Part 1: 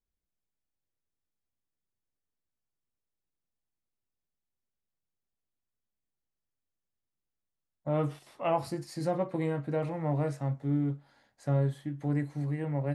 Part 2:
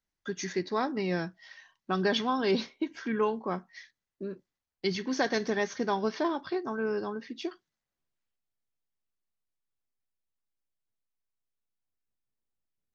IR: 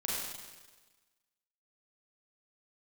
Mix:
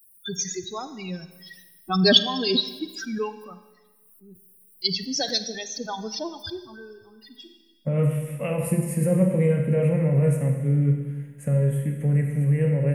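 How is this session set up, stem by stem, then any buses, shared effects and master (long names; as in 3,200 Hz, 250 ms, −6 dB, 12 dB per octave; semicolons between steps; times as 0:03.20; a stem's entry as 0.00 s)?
+1.5 dB, 0.00 s, send −3.5 dB, brickwall limiter −24 dBFS, peak gain reduction 7.5 dB; drawn EQ curve 100 Hz 0 dB, 200 Hz +14 dB, 310 Hz −7 dB, 490 Hz +9 dB, 780 Hz −12 dB, 2,600 Hz +7 dB, 4,300 Hz −21 dB, 9,500 Hz +13 dB
+2.0 dB, 0.00 s, send −14.5 dB, spectral dynamics exaggerated over time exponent 3; high shelf with overshoot 2,700 Hz +10.5 dB, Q 3; background raised ahead of every attack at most 47 dB per second; automatic ducking −13 dB, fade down 1.35 s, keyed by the first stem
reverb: on, RT60 1.3 s, pre-delay 33 ms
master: no processing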